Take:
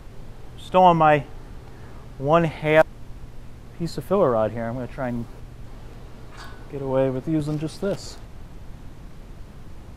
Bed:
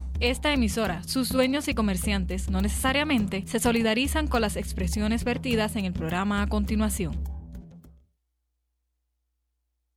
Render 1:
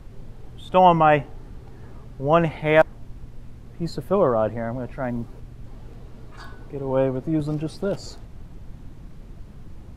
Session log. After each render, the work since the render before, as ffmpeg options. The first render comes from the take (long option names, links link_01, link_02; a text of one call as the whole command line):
ffmpeg -i in.wav -af "afftdn=noise_reduction=6:noise_floor=-42" out.wav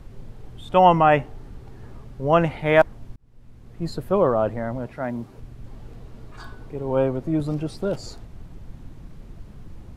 ffmpeg -i in.wav -filter_complex "[0:a]asettb=1/sr,asplit=3[link_01][link_02][link_03];[link_01]atrim=end=4.864[link_04];[link_02]atrim=start=4.86:end=5.38,asetpts=PTS-STARTPTS,afade=type=in:duration=0.004:curve=qsin,afade=type=out:start_time=0.516:duration=0.004:curve=qsin,highpass=frequency=140:poles=1[link_05];[link_03]atrim=start=5.376[link_06];[link_04][link_05]acrossfade=duration=0.004:curve1=hsin:curve2=qsin[link_07];[link_07][link_06]acrossfade=duration=0.004:curve1=qsin:curve2=hsin,asplit=2[link_08][link_09];[link_08]atrim=end=3.16,asetpts=PTS-STARTPTS,afade=type=out:start_time=3.156:duration=0.004:curve=hsin[link_10];[link_09]atrim=start=3.16,asetpts=PTS-STARTPTS,afade=type=in:duration=0.72[link_11];[link_10][link_11]concat=n=2:v=0:a=1" out.wav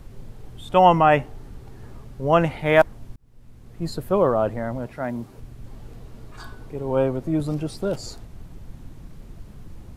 ffmpeg -i in.wav -af "highshelf=frequency=6800:gain=8" out.wav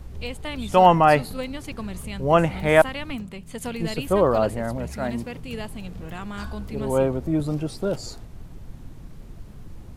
ffmpeg -i in.wav -i bed.wav -filter_complex "[1:a]volume=-8.5dB[link_01];[0:a][link_01]amix=inputs=2:normalize=0" out.wav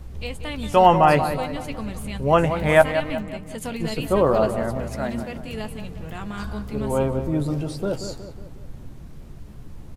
ffmpeg -i in.wav -filter_complex "[0:a]asplit=2[link_01][link_02];[link_02]adelay=14,volume=-10.5dB[link_03];[link_01][link_03]amix=inputs=2:normalize=0,asplit=2[link_04][link_05];[link_05]adelay=183,lowpass=frequency=2100:poles=1,volume=-9dB,asplit=2[link_06][link_07];[link_07]adelay=183,lowpass=frequency=2100:poles=1,volume=0.5,asplit=2[link_08][link_09];[link_09]adelay=183,lowpass=frequency=2100:poles=1,volume=0.5,asplit=2[link_10][link_11];[link_11]adelay=183,lowpass=frequency=2100:poles=1,volume=0.5,asplit=2[link_12][link_13];[link_13]adelay=183,lowpass=frequency=2100:poles=1,volume=0.5,asplit=2[link_14][link_15];[link_15]adelay=183,lowpass=frequency=2100:poles=1,volume=0.5[link_16];[link_04][link_06][link_08][link_10][link_12][link_14][link_16]amix=inputs=7:normalize=0" out.wav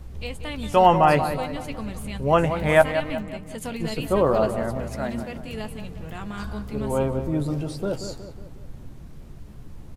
ffmpeg -i in.wav -af "volume=-1.5dB" out.wav